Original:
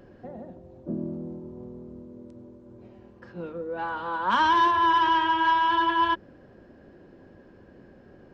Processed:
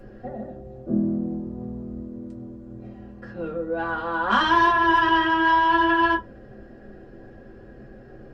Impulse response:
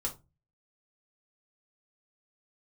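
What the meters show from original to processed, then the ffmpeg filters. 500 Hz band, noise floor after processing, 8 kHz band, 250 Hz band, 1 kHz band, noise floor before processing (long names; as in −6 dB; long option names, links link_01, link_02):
+6.5 dB, −45 dBFS, can't be measured, +8.0 dB, +1.5 dB, −53 dBFS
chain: -filter_complex "[1:a]atrim=start_sample=2205,asetrate=61740,aresample=44100[link_01];[0:a][link_01]afir=irnorm=-1:irlink=0,volume=5dB"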